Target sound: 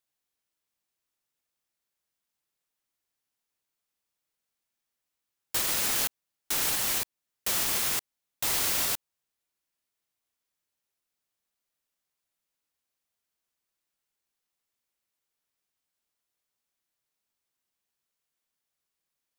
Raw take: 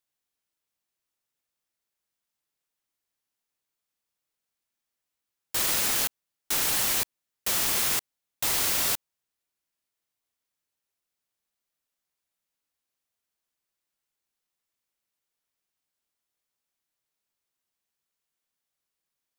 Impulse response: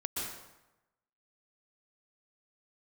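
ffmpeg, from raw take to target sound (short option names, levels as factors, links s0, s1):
-af "alimiter=limit=0.15:level=0:latency=1:release=325"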